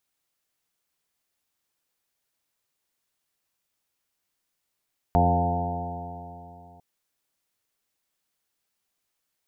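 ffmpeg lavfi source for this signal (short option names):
-f lavfi -i "aevalsrc='0.0841*pow(10,-3*t/3.01)*sin(2*PI*85.54*t)+0.0668*pow(10,-3*t/3.01)*sin(2*PI*171.33*t)+0.0422*pow(10,-3*t/3.01)*sin(2*PI*257.62*t)+0.0211*pow(10,-3*t/3.01)*sin(2*PI*344.64*t)+0.0282*pow(10,-3*t/3.01)*sin(2*PI*432.65*t)+0.0237*pow(10,-3*t/3.01)*sin(2*PI*521.88*t)+0.015*pow(10,-3*t/3.01)*sin(2*PI*612.56*t)+0.106*pow(10,-3*t/3.01)*sin(2*PI*704.91*t)+0.0398*pow(10,-3*t/3.01)*sin(2*PI*799.16*t)+0.0447*pow(10,-3*t/3.01)*sin(2*PI*895.51*t)':d=1.65:s=44100"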